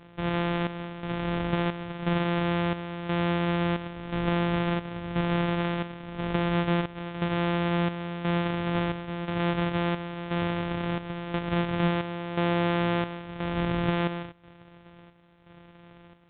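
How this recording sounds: a buzz of ramps at a fixed pitch in blocks of 256 samples; chopped level 0.97 Hz, depth 65%, duty 65%; A-law

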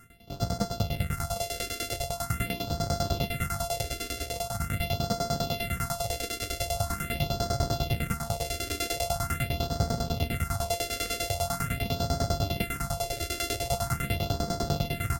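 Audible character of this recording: a buzz of ramps at a fixed pitch in blocks of 64 samples; tremolo saw down 10 Hz, depth 95%; phasing stages 4, 0.43 Hz, lowest notch 150–2500 Hz; Vorbis

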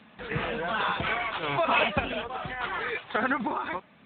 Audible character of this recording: random-step tremolo; AMR-NB

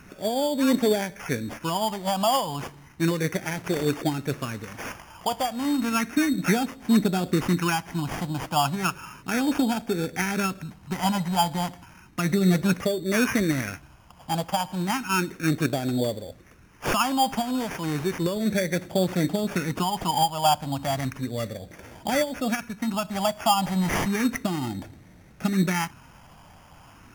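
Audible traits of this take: phasing stages 4, 0.33 Hz, lowest notch 380–1200 Hz; aliases and images of a low sample rate 4 kHz, jitter 0%; Vorbis

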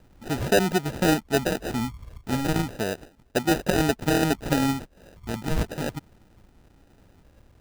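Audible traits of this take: phasing stages 12, 0.34 Hz, lowest notch 410–2000 Hz; aliases and images of a low sample rate 1.1 kHz, jitter 0%

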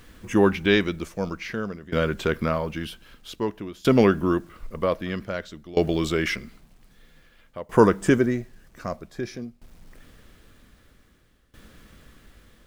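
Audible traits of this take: a quantiser's noise floor 10-bit, dither none; tremolo saw down 0.52 Hz, depth 90%

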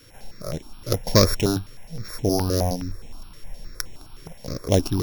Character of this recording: a buzz of ramps at a fixed pitch in blocks of 8 samples; notches that jump at a steady rate 9.6 Hz 210–4700 Hz

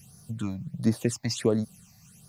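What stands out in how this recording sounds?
a quantiser's noise floor 12-bit, dither none; phasing stages 8, 1.4 Hz, lowest notch 390–2800 Hz

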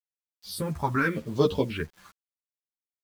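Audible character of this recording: phasing stages 4, 0.87 Hz, lowest notch 460–2100 Hz; a quantiser's noise floor 10-bit, dither none; a shimmering, thickened sound

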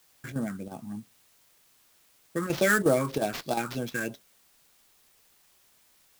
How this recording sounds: phasing stages 4, 3.2 Hz, lowest notch 630–2100 Hz; aliases and images of a low sample rate 9.3 kHz, jitter 20%; chopped level 2.8 Hz, depth 60%, duty 90%; a quantiser's noise floor 12-bit, dither triangular

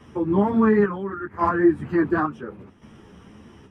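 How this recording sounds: chopped level 0.71 Hz, depth 60%, duty 60%; a shimmering, thickened sound

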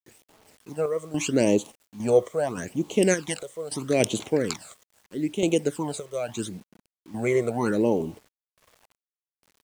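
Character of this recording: phasing stages 12, 0.78 Hz, lowest notch 260–1700 Hz; random-step tremolo, depth 85%; a quantiser's noise floor 10-bit, dither none

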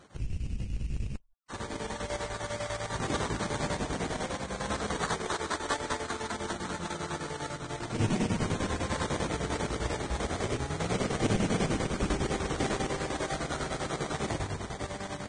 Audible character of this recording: chopped level 10 Hz, depth 65%, duty 65%; aliases and images of a low sample rate 2.7 kHz, jitter 20%; Vorbis

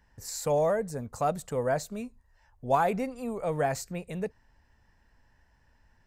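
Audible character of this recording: noise floor -66 dBFS; spectral tilt -5.5 dB/octave

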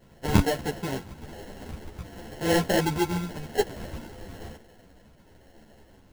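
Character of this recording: phasing stages 2, 0.49 Hz, lowest notch 250–2200 Hz; aliases and images of a low sample rate 1.2 kHz, jitter 0%; a shimmering, thickened sound

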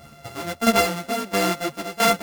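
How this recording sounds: a buzz of ramps at a fixed pitch in blocks of 64 samples; tremolo saw down 1.5 Hz, depth 70%; a shimmering, thickened sound

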